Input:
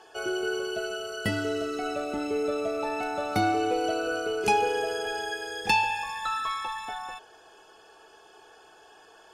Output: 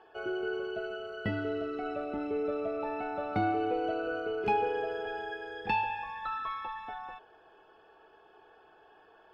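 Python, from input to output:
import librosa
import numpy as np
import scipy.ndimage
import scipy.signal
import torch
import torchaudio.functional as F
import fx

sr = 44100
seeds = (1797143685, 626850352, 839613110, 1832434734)

y = fx.air_absorb(x, sr, metres=430.0)
y = y * 10.0 ** (-3.0 / 20.0)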